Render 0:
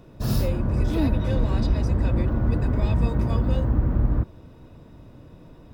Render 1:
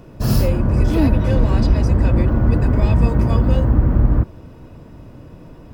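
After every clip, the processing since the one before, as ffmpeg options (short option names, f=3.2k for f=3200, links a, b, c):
-af "bandreject=f=3.7k:w=8.8,volume=7dB"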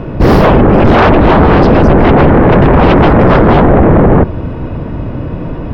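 -filter_complex "[0:a]highshelf=f=5.5k:g=-7.5,acrossover=split=3700[a][b];[a]aeval=exprs='0.794*sin(PI/2*7.08*val(0)/0.794)':c=same[c];[c][b]amix=inputs=2:normalize=0"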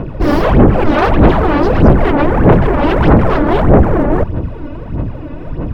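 -af "aphaser=in_gain=1:out_gain=1:delay=3.5:decay=0.64:speed=1.6:type=sinusoidal,volume=-8dB"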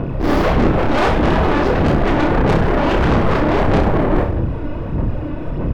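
-filter_complex "[0:a]asoftclip=type=tanh:threshold=-14dB,asplit=2[a][b];[b]aecho=0:1:30|63|99.3|139.2|183.2:0.631|0.398|0.251|0.158|0.1[c];[a][c]amix=inputs=2:normalize=0"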